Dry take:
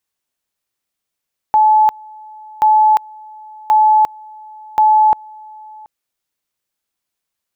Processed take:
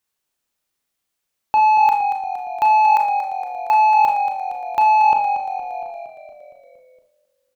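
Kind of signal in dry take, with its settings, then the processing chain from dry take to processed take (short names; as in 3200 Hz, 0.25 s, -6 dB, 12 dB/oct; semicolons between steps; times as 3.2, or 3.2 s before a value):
two-level tone 861 Hz -7 dBFS, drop 26 dB, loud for 0.35 s, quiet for 0.73 s, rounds 4
soft clip -11 dBFS; frequency-shifting echo 0.232 s, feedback 62%, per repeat -44 Hz, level -10 dB; Schroeder reverb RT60 0.37 s, combs from 26 ms, DRR 4.5 dB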